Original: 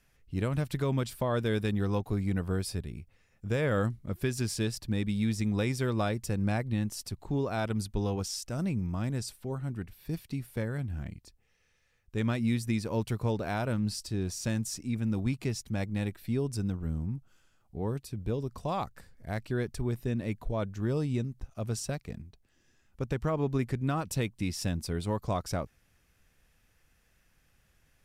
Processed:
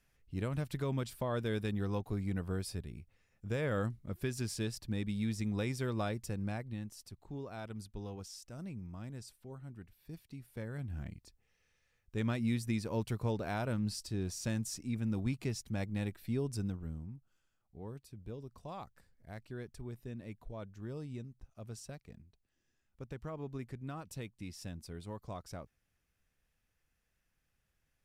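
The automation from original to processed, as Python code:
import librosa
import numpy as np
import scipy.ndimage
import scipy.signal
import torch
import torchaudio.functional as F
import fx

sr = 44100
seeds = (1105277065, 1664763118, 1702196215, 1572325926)

y = fx.gain(x, sr, db=fx.line((6.17, -6.0), (6.96, -13.0), (10.37, -13.0), (10.97, -4.5), (16.62, -4.5), (17.15, -13.0)))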